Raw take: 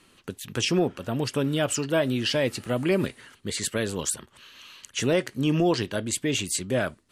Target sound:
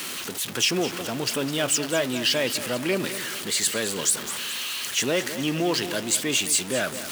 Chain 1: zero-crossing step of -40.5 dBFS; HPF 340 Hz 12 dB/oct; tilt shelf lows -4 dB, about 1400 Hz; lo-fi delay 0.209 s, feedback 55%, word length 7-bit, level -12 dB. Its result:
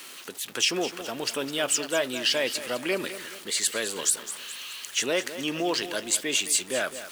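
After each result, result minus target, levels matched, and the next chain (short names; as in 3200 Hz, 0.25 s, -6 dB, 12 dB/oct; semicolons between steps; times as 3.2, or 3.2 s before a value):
125 Hz band -9.0 dB; zero-crossing step: distortion -10 dB
zero-crossing step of -40.5 dBFS; HPF 170 Hz 12 dB/oct; tilt shelf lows -4 dB, about 1400 Hz; lo-fi delay 0.209 s, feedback 55%, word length 7-bit, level -12 dB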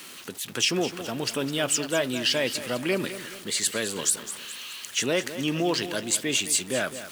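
zero-crossing step: distortion -10 dB
zero-crossing step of -29 dBFS; HPF 170 Hz 12 dB/oct; tilt shelf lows -4 dB, about 1400 Hz; lo-fi delay 0.209 s, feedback 55%, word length 7-bit, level -12 dB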